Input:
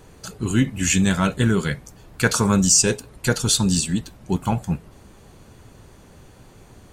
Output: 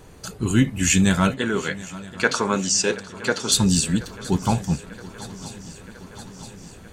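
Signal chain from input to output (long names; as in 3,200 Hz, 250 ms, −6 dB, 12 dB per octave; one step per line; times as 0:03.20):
0:01.34–0:03.52: band-pass filter 320–4,900 Hz
feedback echo with a long and a short gap by turns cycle 970 ms, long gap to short 3 to 1, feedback 66%, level −19 dB
level +1 dB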